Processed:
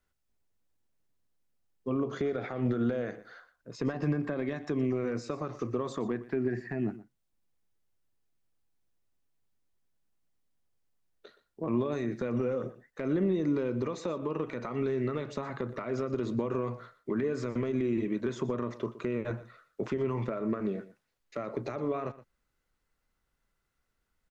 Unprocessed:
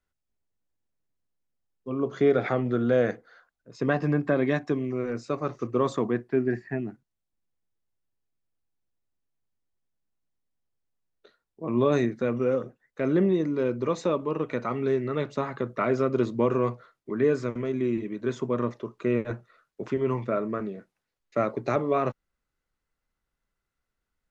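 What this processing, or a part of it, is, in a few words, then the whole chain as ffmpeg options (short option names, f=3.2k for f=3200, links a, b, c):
de-esser from a sidechain: -filter_complex "[0:a]asplit=2[a][b];[b]highpass=f=4k:p=1,apad=whole_len=1071786[c];[a][c]sidechaincompress=threshold=-48dB:ratio=10:attack=1.9:release=92,aecho=1:1:120:0.15,volume=3.5dB"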